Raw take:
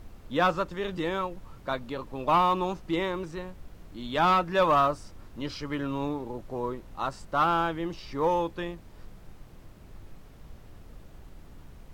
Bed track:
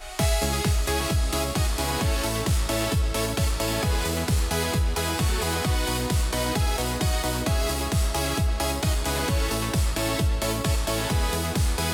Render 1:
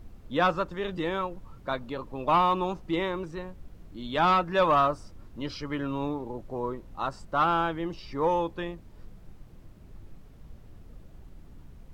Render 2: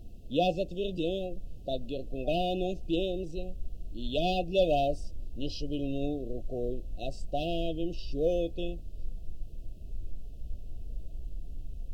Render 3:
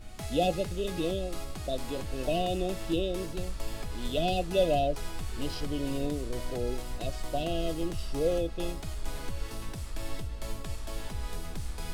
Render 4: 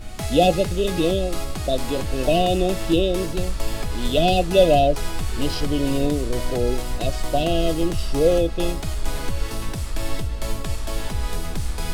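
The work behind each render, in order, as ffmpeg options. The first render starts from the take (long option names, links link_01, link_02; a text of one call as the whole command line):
ffmpeg -i in.wav -af "afftdn=noise_reduction=6:noise_floor=-50" out.wav
ffmpeg -i in.wav -af "afftfilt=real='re*(1-between(b*sr/4096,750,2500))':imag='im*(1-between(b*sr/4096,750,2500))':win_size=4096:overlap=0.75,asubboost=boost=4:cutoff=69" out.wav
ffmpeg -i in.wav -i bed.wav -filter_complex "[1:a]volume=-16dB[link_01];[0:a][link_01]amix=inputs=2:normalize=0" out.wav
ffmpeg -i in.wav -af "volume=10.5dB" out.wav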